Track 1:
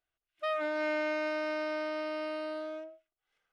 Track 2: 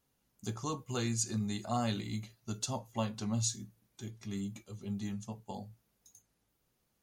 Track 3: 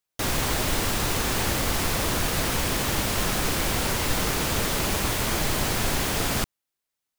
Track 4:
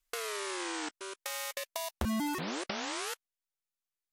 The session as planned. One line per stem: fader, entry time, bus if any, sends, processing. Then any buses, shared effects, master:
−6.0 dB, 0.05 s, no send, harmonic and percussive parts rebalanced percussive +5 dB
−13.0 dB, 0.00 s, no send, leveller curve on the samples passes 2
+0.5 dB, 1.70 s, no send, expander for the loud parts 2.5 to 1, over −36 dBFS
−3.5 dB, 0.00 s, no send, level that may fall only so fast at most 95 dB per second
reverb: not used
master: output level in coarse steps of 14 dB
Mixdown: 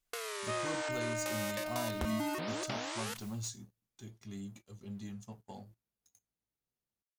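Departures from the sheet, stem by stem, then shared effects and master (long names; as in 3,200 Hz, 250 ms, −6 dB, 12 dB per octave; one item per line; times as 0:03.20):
stem 3: muted
master: missing output level in coarse steps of 14 dB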